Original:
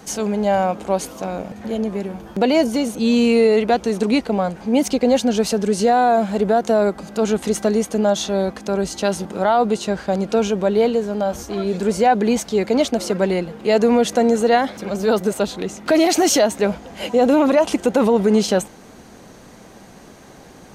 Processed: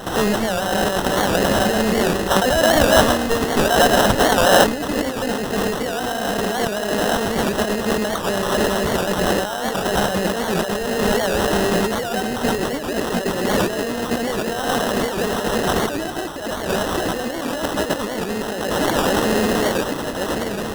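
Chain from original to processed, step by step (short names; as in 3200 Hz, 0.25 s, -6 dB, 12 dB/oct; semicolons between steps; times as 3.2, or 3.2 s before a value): regenerating reverse delay 0.554 s, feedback 60%, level -11 dB; in parallel at -10 dB: wavefolder -22 dBFS; on the sum: high shelf 2200 Hz +7.5 dB; on a send: split-band echo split 990 Hz, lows 0.105 s, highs 0.271 s, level -5 dB; on the sum: harmonic-percussive split percussive +9 dB; negative-ratio compressor -18 dBFS, ratio -1; spectral gain 2.3–4.64, 500–4000 Hz +11 dB; sample-rate reducer 2300 Hz, jitter 0%; record warp 78 rpm, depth 160 cents; gain -3.5 dB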